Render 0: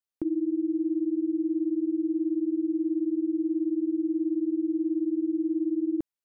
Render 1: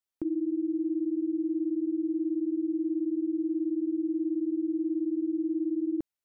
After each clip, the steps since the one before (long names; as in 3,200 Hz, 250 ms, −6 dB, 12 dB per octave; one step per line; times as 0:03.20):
brickwall limiter −24 dBFS, peak gain reduction 3 dB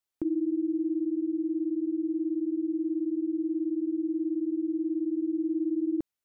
speech leveller 2 s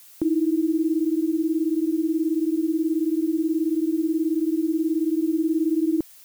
background noise blue −55 dBFS
level +6.5 dB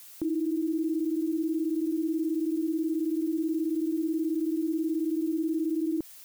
brickwall limiter −23.5 dBFS, peak gain reduction 8 dB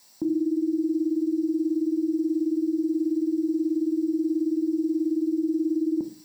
convolution reverb RT60 0.40 s, pre-delay 3 ms, DRR 7 dB
level −7 dB